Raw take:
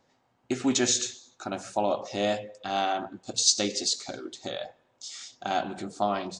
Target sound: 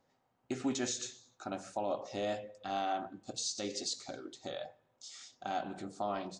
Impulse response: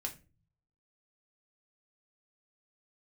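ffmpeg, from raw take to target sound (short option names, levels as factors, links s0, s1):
-filter_complex "[0:a]alimiter=limit=0.141:level=0:latency=1:release=105,asplit=2[s0][s1];[1:a]atrim=start_sample=2205,lowpass=2100[s2];[s1][s2]afir=irnorm=-1:irlink=0,volume=0.447[s3];[s0][s3]amix=inputs=2:normalize=0,volume=0.355"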